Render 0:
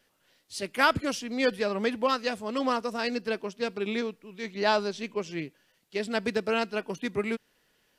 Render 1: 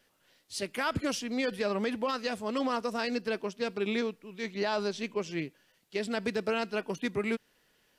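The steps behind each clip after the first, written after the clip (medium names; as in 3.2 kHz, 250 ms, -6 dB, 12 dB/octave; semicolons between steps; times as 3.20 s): peak limiter -21 dBFS, peak gain reduction 11.5 dB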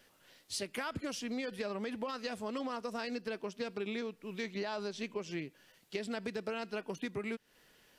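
compression 6:1, threshold -40 dBFS, peak gain reduction 13.5 dB; trim +4 dB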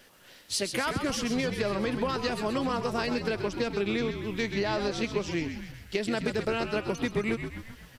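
frequency-shifting echo 130 ms, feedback 58%, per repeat -70 Hz, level -7.5 dB; trim +8.5 dB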